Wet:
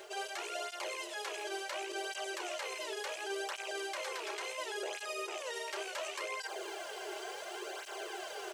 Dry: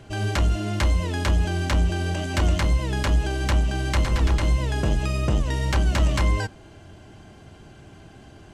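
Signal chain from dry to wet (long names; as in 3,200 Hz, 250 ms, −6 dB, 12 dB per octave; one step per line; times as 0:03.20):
loose part that buzzes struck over −18 dBFS, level −24 dBFS
linear-phase brick-wall high-pass 350 Hz
high-shelf EQ 4,400 Hz +4 dB
bit-depth reduction 12 bits, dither triangular
reversed playback
downward compressor 5 to 1, threshold −43 dBFS, peak gain reduction 18.5 dB
reversed playback
brickwall limiter −39 dBFS, peak gain reduction 9 dB
double-tracking delay 33 ms −12 dB
through-zero flanger with one copy inverted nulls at 0.7 Hz, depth 4.2 ms
level +11.5 dB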